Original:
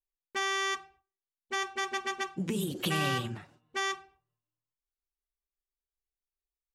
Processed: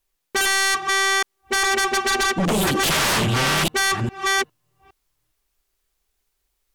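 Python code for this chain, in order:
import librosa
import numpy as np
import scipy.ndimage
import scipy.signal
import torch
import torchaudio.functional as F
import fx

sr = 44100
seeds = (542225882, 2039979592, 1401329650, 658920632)

y = fx.reverse_delay(x, sr, ms=409, wet_db=-2)
y = fx.fold_sine(y, sr, drive_db=16, ceiling_db=-15.0)
y = y * 10.0 ** (-1.5 / 20.0)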